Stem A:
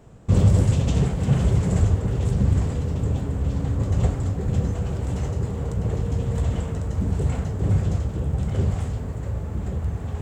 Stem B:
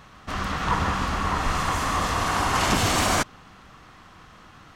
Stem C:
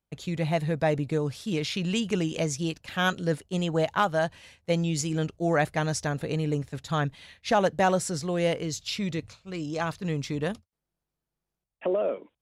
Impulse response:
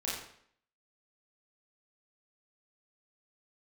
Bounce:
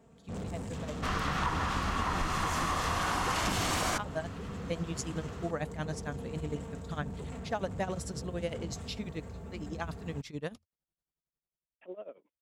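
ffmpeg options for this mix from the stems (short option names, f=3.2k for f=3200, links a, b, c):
-filter_complex "[0:a]highpass=80,aecho=1:1:4.4:0.62,asoftclip=type=tanh:threshold=-25.5dB,volume=-10.5dB[a];[1:a]bandreject=f=48.29:t=h:w=4,bandreject=f=96.58:t=h:w=4,bandreject=f=144.87:t=h:w=4,bandreject=f=193.16:t=h:w=4,bandreject=f=241.45:t=h:w=4,bandreject=f=289.74:t=h:w=4,bandreject=f=338.03:t=h:w=4,bandreject=f=386.32:t=h:w=4,bandreject=f=434.61:t=h:w=4,bandreject=f=482.9:t=h:w=4,bandreject=f=531.19:t=h:w=4,bandreject=f=579.48:t=h:w=4,bandreject=f=627.77:t=h:w=4,bandreject=f=676.06:t=h:w=4,bandreject=f=724.35:t=h:w=4,bandreject=f=772.64:t=h:w=4,bandreject=f=820.93:t=h:w=4,bandreject=f=869.22:t=h:w=4,bandreject=f=917.51:t=h:w=4,adelay=750,volume=-1dB[b];[2:a]dynaudnorm=f=330:g=9:m=11.5dB,tremolo=f=11:d=0.89,volume=-16.5dB[c];[a][b][c]amix=inputs=3:normalize=0,acompressor=threshold=-28dB:ratio=5"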